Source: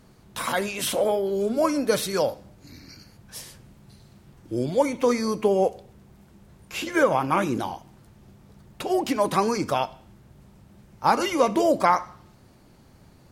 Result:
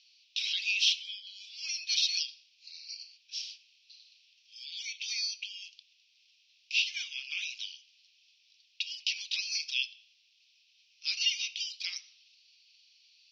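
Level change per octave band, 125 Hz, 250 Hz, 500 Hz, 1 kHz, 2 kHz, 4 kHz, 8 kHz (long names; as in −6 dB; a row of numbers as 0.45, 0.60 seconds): below −40 dB, below −40 dB, below −40 dB, below −40 dB, −3.5 dB, +6.0 dB, −3.5 dB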